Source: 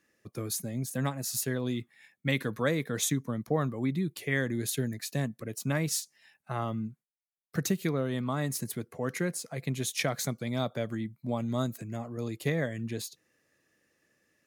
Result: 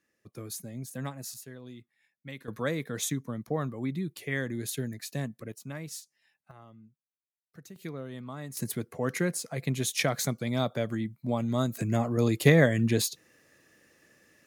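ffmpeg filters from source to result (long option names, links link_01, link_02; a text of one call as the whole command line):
ffmpeg -i in.wav -af "asetnsamples=nb_out_samples=441:pad=0,asendcmd='1.34 volume volume -14dB;2.48 volume volume -2.5dB;5.52 volume volume -10dB;6.51 volume volume -19.5dB;7.76 volume volume -9dB;8.57 volume volume 2.5dB;11.77 volume volume 10dB',volume=-5.5dB" out.wav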